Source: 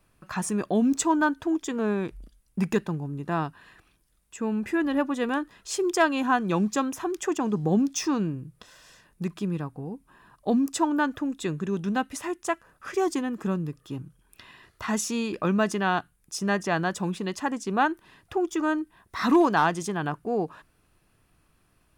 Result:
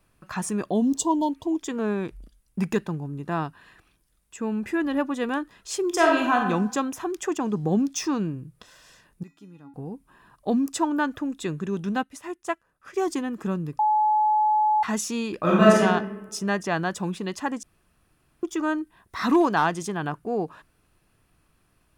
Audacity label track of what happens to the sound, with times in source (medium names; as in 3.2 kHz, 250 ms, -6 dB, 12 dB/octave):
0.720000	1.550000	spectral replace 1.1–2.8 kHz
5.880000	6.430000	reverb throw, RT60 0.84 s, DRR 0.5 dB
9.230000	9.740000	feedback comb 280 Hz, decay 0.4 s, harmonics odd, mix 90%
12.030000	13.080000	upward expansion, over -46 dBFS
13.790000	14.830000	bleep 854 Hz -17.5 dBFS
15.400000	15.810000	reverb throw, RT60 1.1 s, DRR -6.5 dB
17.630000	18.430000	room tone